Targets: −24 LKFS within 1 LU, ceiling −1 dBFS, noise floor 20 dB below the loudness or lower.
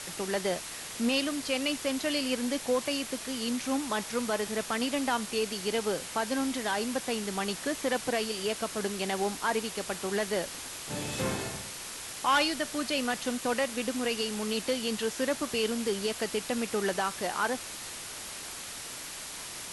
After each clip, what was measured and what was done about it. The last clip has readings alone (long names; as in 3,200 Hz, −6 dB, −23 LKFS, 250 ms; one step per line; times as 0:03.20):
background noise floor −41 dBFS; target noise floor −51 dBFS; integrated loudness −31.0 LKFS; sample peak −16.5 dBFS; target loudness −24.0 LKFS
→ broadband denoise 10 dB, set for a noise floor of −41 dBFS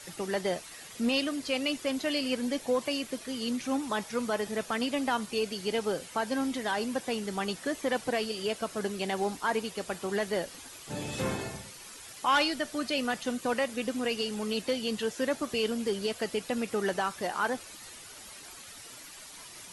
background noise floor −48 dBFS; target noise floor −52 dBFS
→ broadband denoise 6 dB, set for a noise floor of −48 dBFS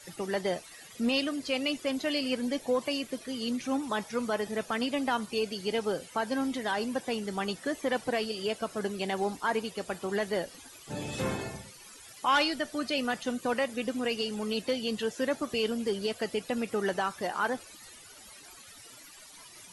background noise floor −51 dBFS; target noise floor −52 dBFS
→ broadband denoise 6 dB, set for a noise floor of −51 dBFS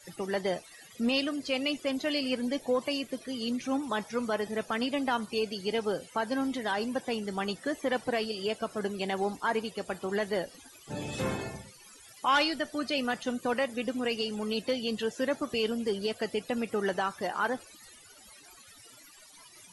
background noise floor −54 dBFS; integrated loudness −31.5 LKFS; sample peak −16.5 dBFS; target loudness −24.0 LKFS
→ level +7.5 dB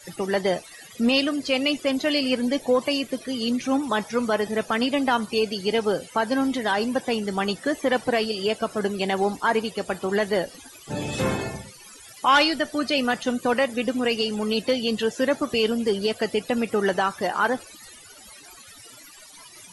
integrated loudness −24.0 LKFS; sample peak −9.0 dBFS; background noise floor −47 dBFS